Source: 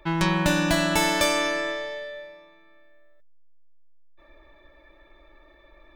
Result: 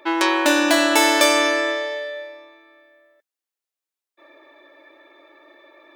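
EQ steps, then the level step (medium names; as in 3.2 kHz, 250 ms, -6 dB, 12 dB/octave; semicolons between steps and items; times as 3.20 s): brick-wall FIR high-pass 250 Hz; +6.5 dB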